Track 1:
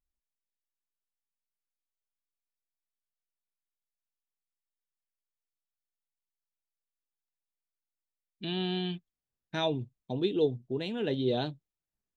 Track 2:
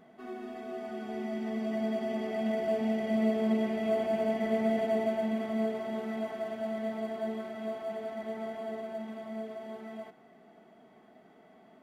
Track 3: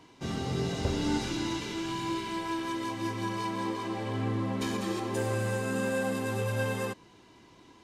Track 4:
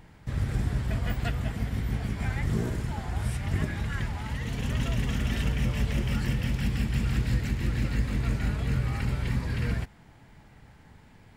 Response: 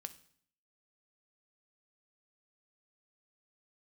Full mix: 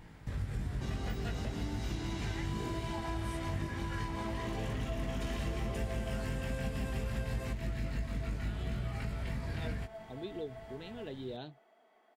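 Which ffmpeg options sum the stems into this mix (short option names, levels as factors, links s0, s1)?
-filter_complex "[0:a]volume=0.251[s0];[1:a]highpass=560,adelay=1000,volume=0.562,asplit=3[s1][s2][s3];[s1]atrim=end=3.58,asetpts=PTS-STARTPTS,afade=t=out:st=3.576:d=0.004:c=hsin[s4];[s2]atrim=start=3.58:end=4.14,asetpts=PTS-STARTPTS,volume=0[s5];[s3]atrim=start=4.14,asetpts=PTS-STARTPTS,afade=t=in:d=0.004:c=hsin[s6];[s4][s5][s6]concat=n=3:v=0:a=1[s7];[2:a]acompressor=threshold=0.0224:ratio=6,adelay=600,volume=1.33[s8];[3:a]flanger=delay=18.5:depth=2.5:speed=0.68,volume=1.26[s9];[s0][s7][s8][s9]amix=inputs=4:normalize=0,acompressor=threshold=0.0141:ratio=2.5"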